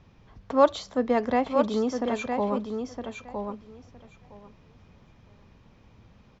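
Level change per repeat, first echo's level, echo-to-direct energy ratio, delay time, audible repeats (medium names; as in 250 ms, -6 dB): -16.5 dB, -6.0 dB, -6.0 dB, 963 ms, 2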